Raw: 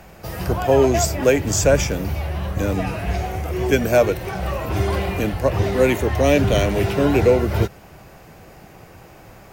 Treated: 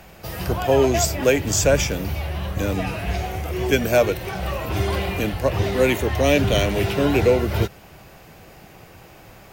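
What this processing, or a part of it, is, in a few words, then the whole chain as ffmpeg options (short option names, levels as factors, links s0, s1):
presence and air boost: -af "equalizer=f=3300:t=o:w=1.2:g=5,highshelf=f=11000:g=5.5,volume=0.794"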